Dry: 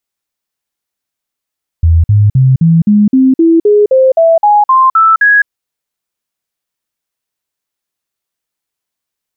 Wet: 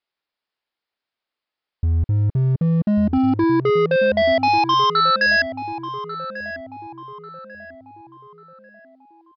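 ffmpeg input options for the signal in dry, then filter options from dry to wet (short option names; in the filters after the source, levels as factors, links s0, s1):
-f lavfi -i "aevalsrc='0.668*clip(min(mod(t,0.26),0.21-mod(t,0.26))/0.005,0,1)*sin(2*PI*82.5*pow(2,floor(t/0.26)/3)*mod(t,0.26))':d=3.64:s=44100"
-filter_complex "[0:a]bass=f=250:g=-10,treble=f=4000:g=-3,aresample=11025,asoftclip=type=hard:threshold=0.168,aresample=44100,asplit=2[s0][s1];[s1]adelay=1143,lowpass=f=1600:p=1,volume=0.282,asplit=2[s2][s3];[s3]adelay=1143,lowpass=f=1600:p=1,volume=0.46,asplit=2[s4][s5];[s5]adelay=1143,lowpass=f=1600:p=1,volume=0.46,asplit=2[s6][s7];[s7]adelay=1143,lowpass=f=1600:p=1,volume=0.46,asplit=2[s8][s9];[s9]adelay=1143,lowpass=f=1600:p=1,volume=0.46[s10];[s0][s2][s4][s6][s8][s10]amix=inputs=6:normalize=0"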